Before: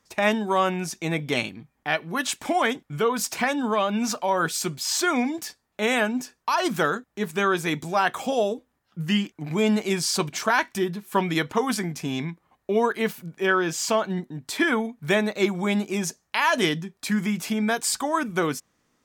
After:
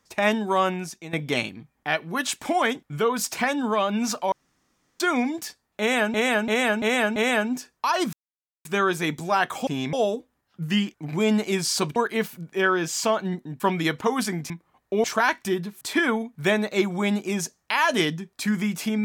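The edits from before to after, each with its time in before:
0.66–1.13 s: fade out, to -15 dB
4.32–5.00 s: room tone
5.80–6.14 s: loop, 5 plays
6.77–7.29 s: mute
10.34–11.11 s: swap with 12.81–14.45 s
12.01–12.27 s: move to 8.31 s

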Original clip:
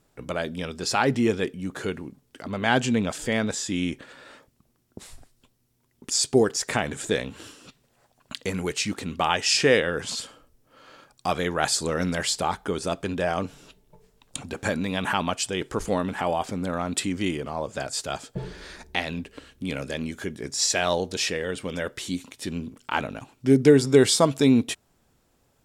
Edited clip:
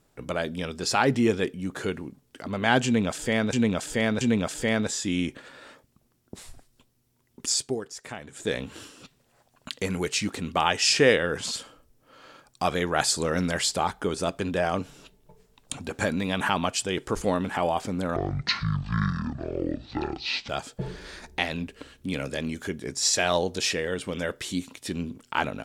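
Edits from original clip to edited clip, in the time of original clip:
2.85–3.53 s: loop, 3 plays
6.11–7.25 s: dip -13 dB, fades 0.29 s
16.80–18.06 s: speed 54%

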